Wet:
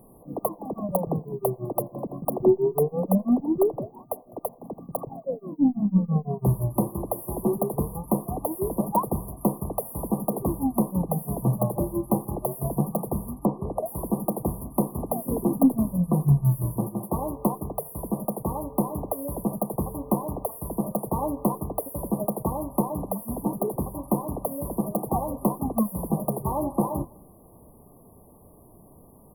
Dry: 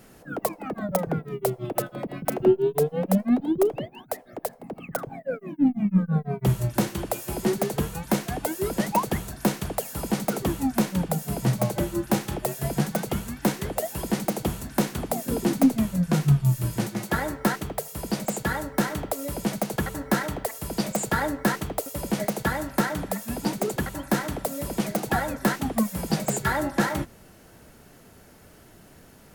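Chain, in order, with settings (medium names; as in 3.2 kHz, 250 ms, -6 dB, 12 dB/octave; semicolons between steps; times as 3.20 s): FFT band-reject 1.2–9.5 kHz; echo from a far wall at 35 m, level -25 dB; 13.34–13.86 s: low-pass that closes with the level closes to 2 kHz, closed at -19 dBFS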